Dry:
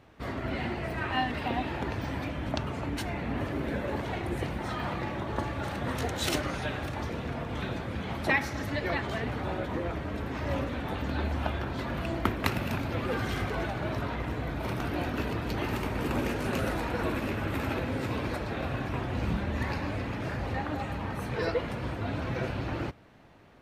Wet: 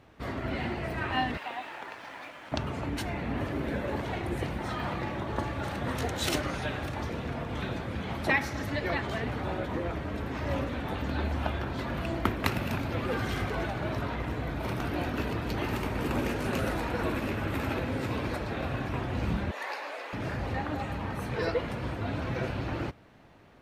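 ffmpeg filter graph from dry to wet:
-filter_complex "[0:a]asettb=1/sr,asplit=3[a][b][c];[a]atrim=end=1.374[d];[b]atrim=start=1.37:end=2.52,asetpts=PTS-STARTPTS,afade=t=in:d=0.004:c=qsin,afade=t=out:st=1.146:d=0.004:c=qsin,highpass=900,aemphasis=mode=reproduction:type=bsi,aeval=exprs='sgn(val(0))*max(abs(val(0))-0.00141,0)':c=same[e];[c]atrim=start=2.516[f];[d][e]acrossfade=d=0.004:c1=hsin:c2=qsin[g];[g][f]acrossfade=d=0.004:c1=qsin:c2=hsin,asettb=1/sr,asplit=3[h][i][j];[h]atrim=end=19.514[k];[i]atrim=start=19.51:end=20.13,asetpts=PTS-STARTPTS,afade=t=in:d=0.004:c=qsin,afade=t=out:st=0.616:d=0.004:c=qsin,highpass=f=500:w=0.5412,highpass=f=500:w=1.3066,asplit=2[l][m];[m]adelay=14,volume=-12.5dB[n];[l][n]amix=inputs=2:normalize=0,atrim=end_sample=27342[o];[j]atrim=start=20.126[p];[k][o]acrossfade=d=0.004:c1=hsin:c2=qsin[q];[q][p]acrossfade=d=0.004:c1=qsin:c2=hsin"

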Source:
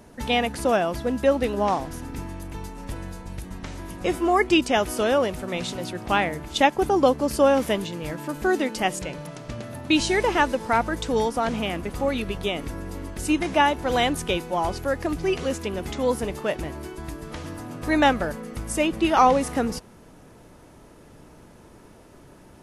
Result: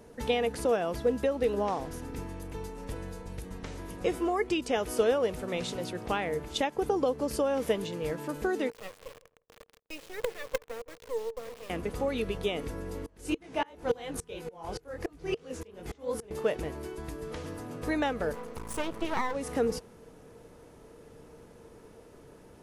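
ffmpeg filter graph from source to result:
-filter_complex "[0:a]asettb=1/sr,asplit=3[a][b][c];[a]atrim=end=8.704[d];[b]atrim=start=8.7:end=11.7,asetpts=PTS-STARTPTS,afade=t=in:d=0.004:c=qsin,afade=t=out:st=2.996:d=0.004:c=qsin,asplit=3[e][f][g];[e]bandpass=f=530:t=q:w=8,volume=0dB[h];[f]bandpass=f=1.84k:t=q:w=8,volume=-6dB[i];[g]bandpass=f=2.48k:t=q:w=8,volume=-9dB[j];[h][i][j]amix=inputs=3:normalize=0,acrusher=bits=4:dc=4:mix=0:aa=0.000001,asplit=2[k][l];[l]adelay=162,lowpass=f=850:p=1,volume=-19.5dB,asplit=2[m][n];[n]adelay=162,lowpass=f=850:p=1,volume=0.18[o];[k][m][o]amix=inputs=3:normalize=0,atrim=end_sample=132300[p];[c]atrim=start=11.696[q];[d][p]acrossfade=d=0.004:c1=hsin:c2=qsin[r];[r][q]acrossfade=d=0.004:c1=qsin:c2=hsin,asettb=1/sr,asplit=3[s][t][u];[s]atrim=end=13.064[v];[t]atrim=start=13.06:end=16.31,asetpts=PTS-STARTPTS,afade=t=in:d=0.004:c=qsin,afade=t=out:st=3.246:d=0.004:c=qsin,acontrast=26,flanger=delay=17.5:depth=7.8:speed=2.9,aeval=exprs='val(0)*pow(10,-31*if(lt(mod(-3.5*n/s,1),2*abs(-3.5)/1000),1-mod(-3.5*n/s,1)/(2*abs(-3.5)/1000),(mod(-3.5*n/s,1)-2*abs(-3.5)/1000)/(1-2*abs(-3.5)/1000))/20)':c=same[w];[u]atrim=start=16.306[x];[v][w]acrossfade=d=0.004:c1=hsin:c2=qsin[y];[y][x]acrossfade=d=0.004:c1=qsin:c2=hsin,asettb=1/sr,asplit=3[z][aa][ab];[z]atrim=end=18.334[ac];[aa]atrim=start=18.33:end=19.35,asetpts=PTS-STARTPTS,afade=t=in:d=0.004:c=qsin,afade=t=out:st=1.016:d=0.004:c=qsin,equalizer=f=990:t=o:w=0.33:g=12.5,aeval=exprs='max(val(0),0)':c=same[ad];[ab]atrim=start=19.346[ae];[ac][ad]acrossfade=d=0.004:c1=hsin:c2=qsin[af];[af][ae]acrossfade=d=0.004:c1=qsin:c2=hsin,acompressor=threshold=-21dB:ratio=6,equalizer=f=460:t=o:w=0.22:g=12.5,volume=-5.5dB"

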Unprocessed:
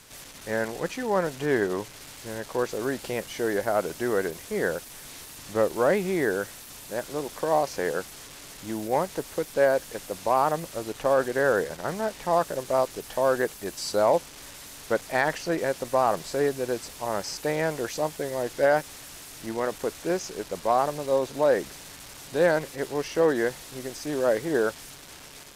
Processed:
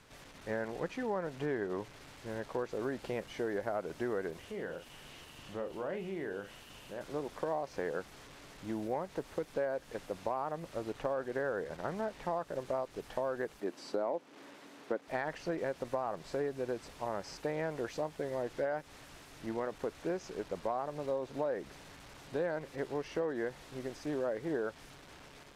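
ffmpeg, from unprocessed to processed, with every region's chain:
-filter_complex "[0:a]asettb=1/sr,asplit=3[a][b][c];[a]atrim=end=4.394[d];[b]atrim=start=4.39:end=7.01,asetpts=PTS-STARTPTS,afade=t=in:d=0.004:c=qsin,afade=t=out:st=2.616:d=0.004:c=qsin,equalizer=f=2.9k:t=o:w=0.24:g=11,acompressor=threshold=-39dB:ratio=2:attack=3.2:release=140:knee=1:detection=peak,asplit=2[e][f];[f]adelay=41,volume=-8dB[g];[e][g]amix=inputs=2:normalize=0,atrim=end_sample=115542[h];[c]atrim=start=7.006[i];[d][h]acrossfade=d=0.004:c1=hsin:c2=qsin[j];[j][i]acrossfade=d=0.004:c1=qsin:c2=hsin,asettb=1/sr,asplit=3[k][l][m];[k]atrim=end=13.604[n];[l]atrim=start=13.6:end=15.08,asetpts=PTS-STARTPTS,afade=t=in:d=0.004:c=qsin,afade=t=out:st=1.476:d=0.004:c=qsin,highpass=f=270:t=q:w=1.8,highshelf=f=4.2k:g=-7[o];[m]atrim=start=15.076[p];[n][o]acrossfade=d=0.004:c1=hsin:c2=qsin[q];[q][p]acrossfade=d=0.004:c1=qsin:c2=hsin,highshelf=f=3.7k:g=-10,acompressor=threshold=-27dB:ratio=6,highshelf=f=7.7k:g=-8.5,volume=-4.5dB"

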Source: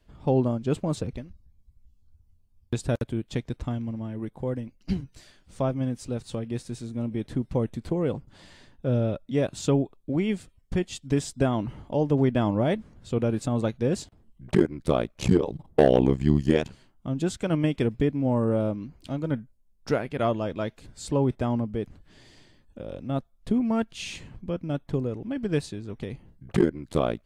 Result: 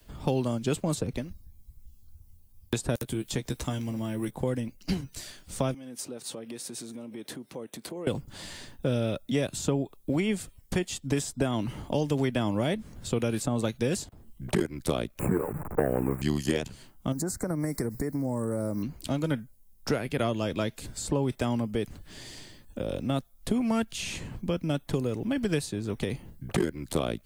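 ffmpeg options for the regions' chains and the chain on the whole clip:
-filter_complex "[0:a]asettb=1/sr,asplit=3[a][b][c];[a]atrim=end=2.964[d];[b]atrim=start=2.96:end=4.31,asetpts=PTS-STARTPTS,afade=t=in:d=0.004:c=qsin,afade=t=out:st=1.346:d=0.004:c=qsin,highshelf=f=2.9k:g=11,acompressor=threshold=-39dB:ratio=1.5:attack=3.2:release=140:knee=1:detection=peak,asplit=2[e][f];[f]adelay=15,volume=-8dB[g];[e][g]amix=inputs=2:normalize=0,atrim=end_sample=59535[h];[c]atrim=start=4.306[i];[d][h]acrossfade=d=0.004:c1=hsin:c2=qsin[j];[j][i]acrossfade=d=0.004:c1=qsin:c2=hsin,asettb=1/sr,asplit=3[k][l][m];[k]atrim=end=5.744[n];[l]atrim=start=5.74:end=8.07,asetpts=PTS-STARTPTS,afade=t=in:d=0.004:c=qsin,afade=t=out:st=2.326:d=0.004:c=qsin,acompressor=threshold=-37dB:ratio=8:attack=3.2:release=140:knee=1:detection=peak,highpass=300,equalizer=f=7.5k:w=7.3:g=-4[o];[m]atrim=start=8.066[p];[n][o]acrossfade=d=0.004:c1=hsin:c2=qsin[q];[q][p]acrossfade=d=0.004:c1=qsin:c2=hsin,asettb=1/sr,asplit=3[r][s][t];[r]atrim=end=15.194[u];[s]atrim=start=15.19:end=16.22,asetpts=PTS-STARTPTS,afade=t=in:d=0.004:c=qsin,afade=t=out:st=1.026:d=0.004:c=qsin,aeval=exprs='val(0)+0.5*0.0168*sgn(val(0))':c=same,asuperstop=centerf=4500:order=12:qfactor=0.89,highshelf=f=1.8k:t=q:w=1.5:g=-12[v];[t]atrim=start=16.216[w];[u][v]acrossfade=d=0.004:c1=hsin:c2=qsin[x];[x][w]acrossfade=d=0.004:c1=qsin:c2=hsin,asettb=1/sr,asplit=3[y][z][aa];[y]atrim=end=17.124[ab];[z]atrim=start=17.12:end=18.83,asetpts=PTS-STARTPTS,afade=t=in:d=0.004:c=qsin,afade=t=out:st=1.706:d=0.004:c=qsin,aemphasis=mode=production:type=50fm,acompressor=threshold=-30dB:ratio=6:attack=3.2:release=140:knee=1:detection=peak,asuperstop=centerf=3000:order=8:qfactor=1.4[ac];[aa]atrim=start=18.826[ad];[ab][ac]acrossfade=d=0.004:c1=hsin:c2=qsin[ae];[ae][ad]acrossfade=d=0.004:c1=qsin:c2=hsin,aemphasis=mode=production:type=50fm,acrossover=split=150|470|1700[af][ag][ah][ai];[af]acompressor=threshold=-44dB:ratio=4[aj];[ag]acompressor=threshold=-37dB:ratio=4[ak];[ah]acompressor=threshold=-42dB:ratio=4[al];[ai]acompressor=threshold=-44dB:ratio=4[am];[aj][ak][al][am]amix=inputs=4:normalize=0,volume=7dB"

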